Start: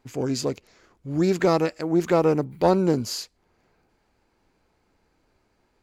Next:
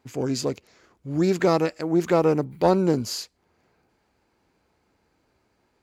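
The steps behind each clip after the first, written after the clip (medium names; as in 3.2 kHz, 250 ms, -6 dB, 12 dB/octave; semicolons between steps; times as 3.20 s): high-pass 56 Hz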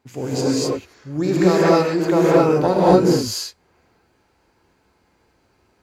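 gated-style reverb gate 280 ms rising, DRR -7 dB; trim -1 dB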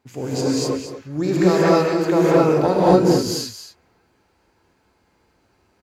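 delay 223 ms -10.5 dB; trim -1 dB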